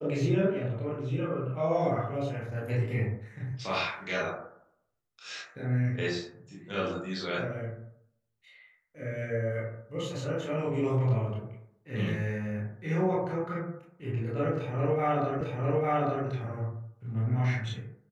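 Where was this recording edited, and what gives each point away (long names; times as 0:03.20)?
0:15.41: the same again, the last 0.85 s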